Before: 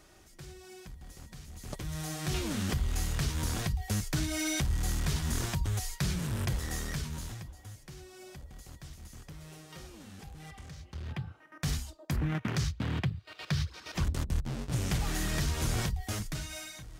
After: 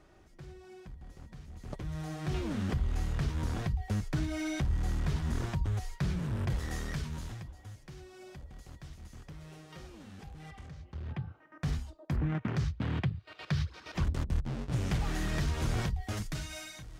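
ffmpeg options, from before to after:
-af "asetnsamples=n=441:p=0,asendcmd='6.5 lowpass f 3100;10.67 lowpass f 1400;12.81 lowpass f 2700;16.17 lowpass f 6500',lowpass=f=1.4k:p=1"

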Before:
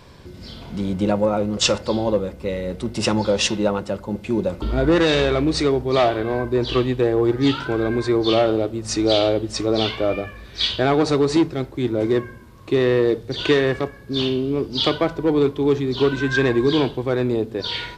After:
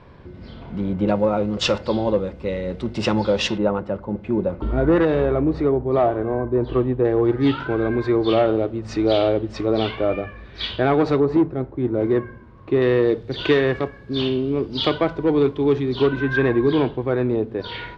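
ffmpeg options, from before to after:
-af "asetnsamples=n=441:p=0,asendcmd='1.08 lowpass f 3800;3.58 lowpass f 1700;5.05 lowpass f 1100;7.05 lowpass f 2500;11.2 lowpass f 1200;11.94 lowpass f 1900;12.82 lowpass f 3500;16.07 lowpass f 2200',lowpass=2.1k"

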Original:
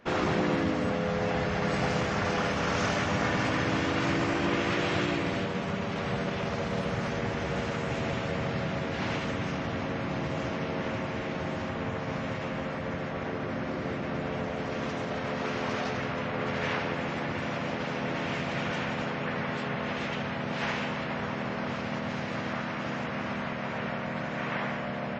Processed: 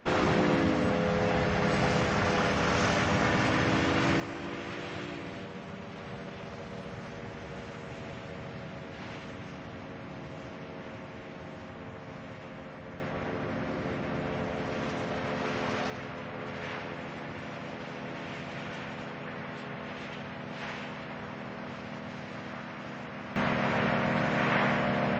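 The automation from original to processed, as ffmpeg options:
-af "asetnsamples=n=441:p=0,asendcmd='4.2 volume volume -10dB;13 volume volume 0dB;15.9 volume volume -7dB;23.36 volume volume 5.5dB',volume=1.5dB"

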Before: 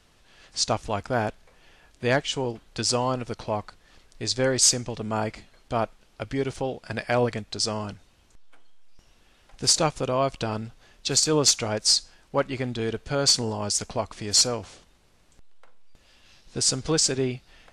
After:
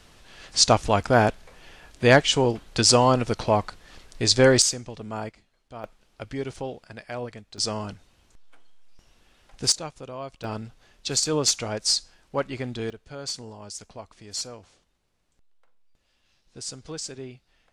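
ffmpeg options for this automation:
-af "asetnsamples=n=441:p=0,asendcmd='4.62 volume volume -5.5dB;5.29 volume volume -14dB;5.84 volume volume -4dB;6.84 volume volume -10.5dB;7.58 volume volume -0.5dB;9.72 volume volume -12dB;10.44 volume volume -2.5dB;12.9 volume volume -12.5dB',volume=7dB"

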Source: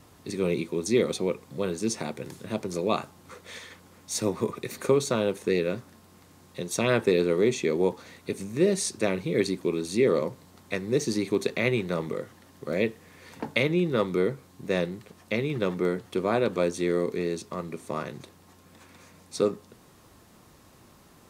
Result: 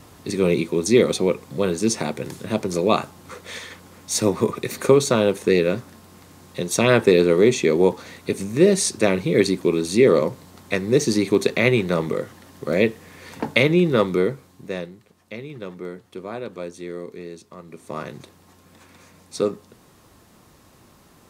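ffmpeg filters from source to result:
-af "volume=17dB,afade=t=out:st=13.91:d=0.74:silence=0.375837,afade=t=out:st=14.65:d=0.29:silence=0.501187,afade=t=in:st=17.64:d=0.42:silence=0.334965"

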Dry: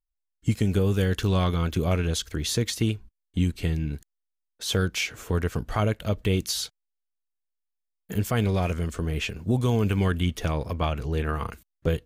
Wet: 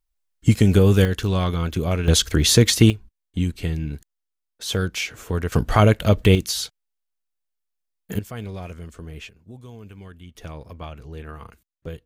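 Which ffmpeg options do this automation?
-af "asetnsamples=n=441:p=0,asendcmd='1.05 volume volume 1.5dB;2.08 volume volume 11dB;2.9 volume volume 1dB;5.52 volume volume 9.5dB;6.35 volume volume 3dB;8.19 volume volume -9dB;9.29 volume volume -18dB;10.35 volume volume -9.5dB',volume=8dB"

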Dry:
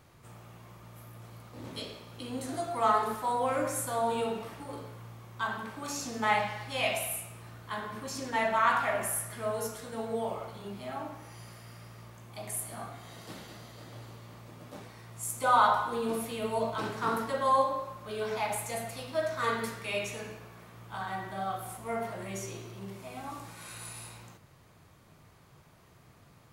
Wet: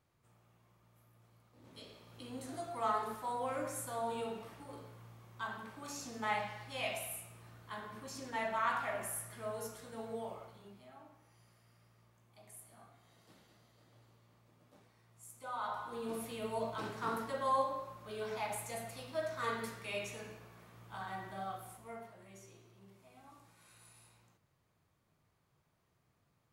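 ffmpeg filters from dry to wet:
-af "volume=3dB,afade=t=in:st=1.61:d=0.56:silence=0.334965,afade=t=out:st=10.09:d=0.82:silence=0.316228,afade=t=in:st=15.58:d=0.67:silence=0.266073,afade=t=out:st=21.36:d=0.76:silence=0.281838"

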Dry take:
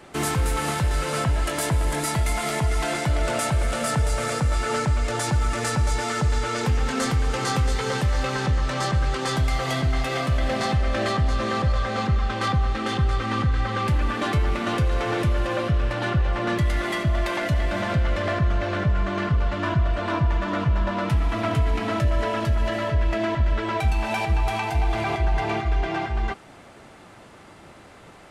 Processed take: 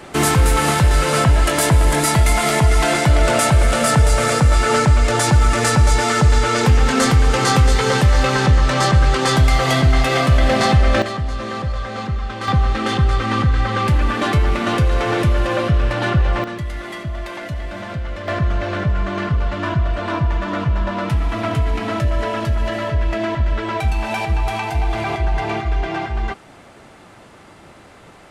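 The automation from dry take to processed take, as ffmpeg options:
-af "asetnsamples=n=441:p=0,asendcmd='11.02 volume volume -1dB;12.48 volume volume 6dB;16.44 volume volume -4dB;18.28 volume volume 3dB',volume=9dB"

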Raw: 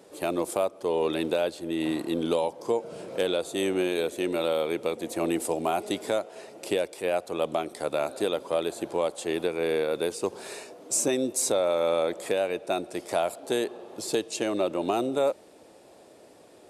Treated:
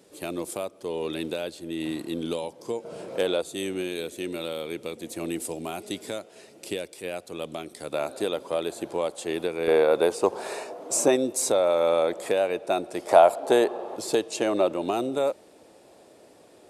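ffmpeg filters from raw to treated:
-af "asetnsamples=n=441:p=0,asendcmd='2.85 equalizer g 2;3.42 equalizer g -9.5;7.92 equalizer g -1;9.68 equalizer g 10.5;11.16 equalizer g 3.5;13.07 equalizer g 12.5;13.96 equalizer g 5.5;14.73 equalizer g -0.5',equalizer=f=800:t=o:w=2.1:g=-7.5"

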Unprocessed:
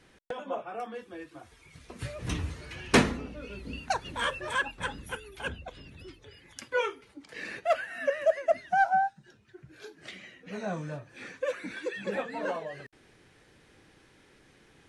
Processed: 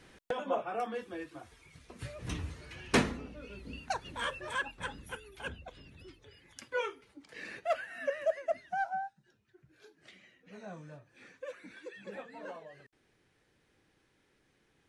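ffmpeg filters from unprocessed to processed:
-af "volume=2dB,afade=t=out:st=1.05:d=0.8:silence=0.421697,afade=t=out:st=8.17:d=0.88:silence=0.473151"

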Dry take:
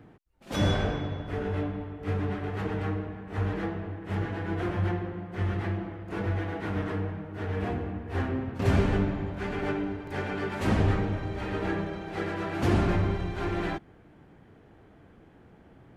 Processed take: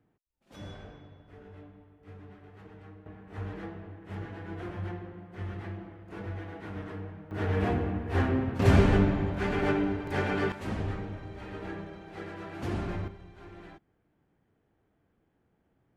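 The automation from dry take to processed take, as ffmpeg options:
-af "asetnsamples=n=441:p=0,asendcmd='3.06 volume volume -8.5dB;7.31 volume volume 3dB;10.52 volume volume -9dB;13.08 volume volume -18dB',volume=-19dB"

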